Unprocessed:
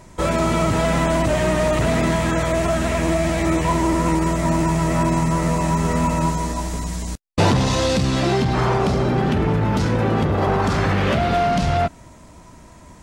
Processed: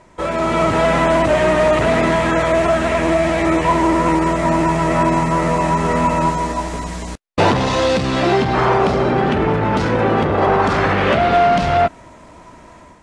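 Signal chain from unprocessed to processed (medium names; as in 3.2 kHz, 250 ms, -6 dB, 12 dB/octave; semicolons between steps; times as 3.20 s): steep low-pass 11 kHz 36 dB/octave; tone controls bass -9 dB, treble -10 dB; level rider gain up to 7 dB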